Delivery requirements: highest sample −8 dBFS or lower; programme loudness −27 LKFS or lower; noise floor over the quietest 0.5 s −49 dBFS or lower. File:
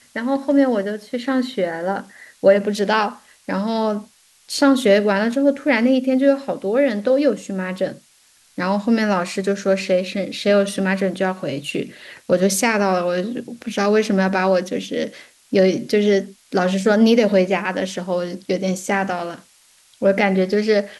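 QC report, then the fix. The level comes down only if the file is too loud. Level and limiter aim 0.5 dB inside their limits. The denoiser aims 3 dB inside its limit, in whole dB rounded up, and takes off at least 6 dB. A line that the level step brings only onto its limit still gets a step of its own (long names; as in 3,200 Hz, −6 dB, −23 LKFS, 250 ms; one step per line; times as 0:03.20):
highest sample −3.0 dBFS: out of spec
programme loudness −19.5 LKFS: out of spec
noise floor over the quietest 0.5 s −55 dBFS: in spec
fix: level −8 dB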